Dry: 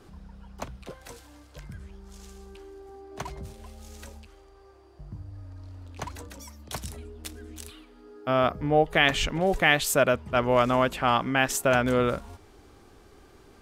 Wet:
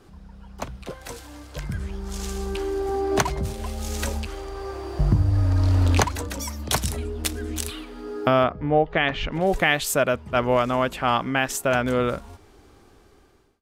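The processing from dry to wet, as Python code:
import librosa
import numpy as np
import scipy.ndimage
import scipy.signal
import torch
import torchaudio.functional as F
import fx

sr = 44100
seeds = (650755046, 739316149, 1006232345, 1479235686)

y = fx.fade_out_tail(x, sr, length_s=3.19)
y = fx.recorder_agc(y, sr, target_db=-9.5, rise_db_per_s=7.0, max_gain_db=30)
y = fx.gaussian_blur(y, sr, sigma=2.2, at=(8.43, 9.31), fade=0.02)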